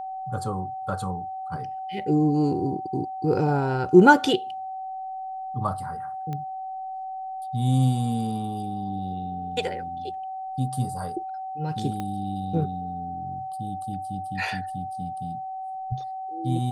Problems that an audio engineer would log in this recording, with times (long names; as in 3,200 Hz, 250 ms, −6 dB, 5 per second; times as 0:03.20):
whistle 760 Hz −31 dBFS
0:06.33: click −21 dBFS
0:12.00: click −18 dBFS